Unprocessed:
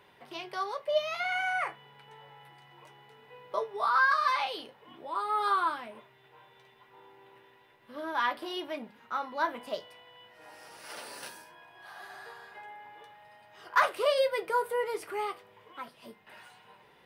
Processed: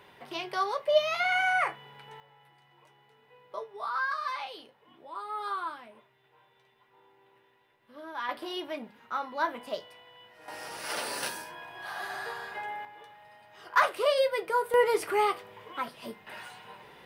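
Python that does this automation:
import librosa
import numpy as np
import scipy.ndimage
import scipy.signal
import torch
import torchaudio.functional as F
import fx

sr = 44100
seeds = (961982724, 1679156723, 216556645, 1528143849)

y = fx.gain(x, sr, db=fx.steps((0.0, 4.5), (2.2, -6.5), (8.29, 0.5), (10.48, 9.5), (12.85, 1.0), (14.74, 8.0)))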